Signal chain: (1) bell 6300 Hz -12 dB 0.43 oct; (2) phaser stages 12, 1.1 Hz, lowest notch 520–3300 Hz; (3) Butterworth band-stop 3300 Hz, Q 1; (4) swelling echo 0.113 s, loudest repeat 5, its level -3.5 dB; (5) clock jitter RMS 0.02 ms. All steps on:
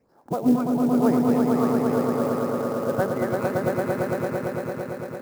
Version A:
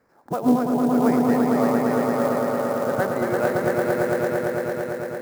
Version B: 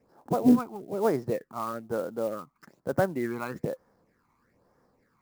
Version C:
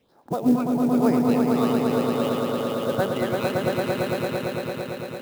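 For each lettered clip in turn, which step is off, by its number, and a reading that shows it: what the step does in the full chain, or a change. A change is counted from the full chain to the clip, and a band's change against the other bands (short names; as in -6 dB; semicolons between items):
2, 125 Hz band -4.0 dB; 4, crest factor change +6.0 dB; 3, 4 kHz band +11.0 dB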